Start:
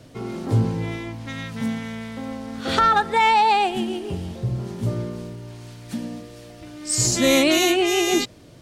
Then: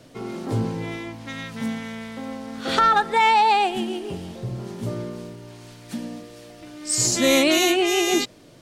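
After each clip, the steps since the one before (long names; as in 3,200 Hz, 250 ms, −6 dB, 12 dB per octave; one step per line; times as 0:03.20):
parametric band 70 Hz −11 dB 1.7 octaves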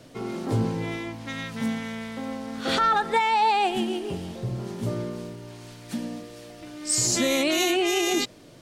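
brickwall limiter −14 dBFS, peak gain reduction 8 dB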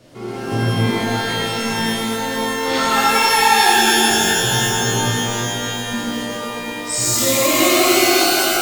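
reverb with rising layers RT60 3.2 s, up +12 semitones, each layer −2 dB, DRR −8 dB
level −2 dB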